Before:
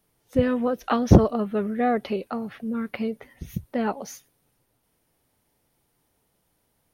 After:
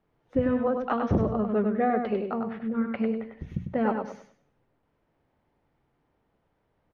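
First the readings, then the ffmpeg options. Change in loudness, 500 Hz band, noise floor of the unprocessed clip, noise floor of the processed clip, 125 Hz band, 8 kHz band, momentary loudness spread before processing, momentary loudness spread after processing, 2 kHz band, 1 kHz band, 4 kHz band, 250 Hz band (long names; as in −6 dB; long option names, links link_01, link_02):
−3.5 dB, −2.0 dB, −72 dBFS, −74 dBFS, −8.0 dB, can't be measured, 19 LU, 8 LU, −3.0 dB, −1.5 dB, below −10 dB, −3.0 dB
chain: -af "lowpass=1900,bandreject=frequency=60:width_type=h:width=6,bandreject=frequency=120:width_type=h:width=6,bandreject=frequency=180:width_type=h:width=6,bandreject=frequency=240:width_type=h:width=6,alimiter=limit=-15dB:level=0:latency=1:release=344,aecho=1:1:99|198|297|396:0.531|0.149|0.0416|0.0117"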